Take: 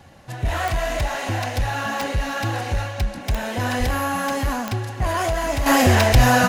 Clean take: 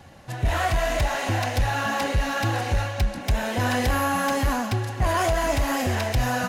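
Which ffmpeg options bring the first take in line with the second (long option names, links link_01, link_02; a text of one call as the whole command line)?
ffmpeg -i in.wav -filter_complex "[0:a]adeclick=threshold=4,asplit=3[link_01][link_02][link_03];[link_01]afade=type=out:start_time=3.79:duration=0.02[link_04];[link_02]highpass=frequency=140:width=0.5412,highpass=frequency=140:width=1.3066,afade=type=in:start_time=3.79:duration=0.02,afade=type=out:start_time=3.91:duration=0.02[link_05];[link_03]afade=type=in:start_time=3.91:duration=0.02[link_06];[link_04][link_05][link_06]amix=inputs=3:normalize=0,asplit=3[link_07][link_08][link_09];[link_07]afade=type=out:start_time=6.11:duration=0.02[link_10];[link_08]highpass=frequency=140:width=0.5412,highpass=frequency=140:width=1.3066,afade=type=in:start_time=6.11:duration=0.02,afade=type=out:start_time=6.23:duration=0.02[link_11];[link_09]afade=type=in:start_time=6.23:duration=0.02[link_12];[link_10][link_11][link_12]amix=inputs=3:normalize=0,asetnsamples=nb_out_samples=441:pad=0,asendcmd='5.66 volume volume -9.5dB',volume=0dB" out.wav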